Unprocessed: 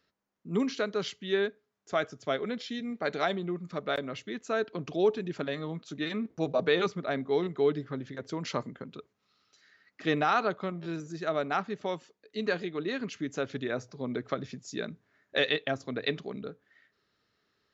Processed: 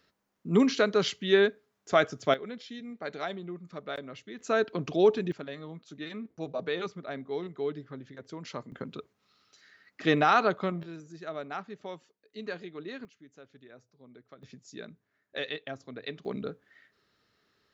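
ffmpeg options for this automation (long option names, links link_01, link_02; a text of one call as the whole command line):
ffmpeg -i in.wav -af "asetnsamples=nb_out_samples=441:pad=0,asendcmd='2.34 volume volume -6dB;4.39 volume volume 3.5dB;5.32 volume volume -6.5dB;8.72 volume volume 3.5dB;10.83 volume volume -7.5dB;13.05 volume volume -20dB;14.43 volume volume -8dB;16.25 volume volume 3.5dB',volume=6dB" out.wav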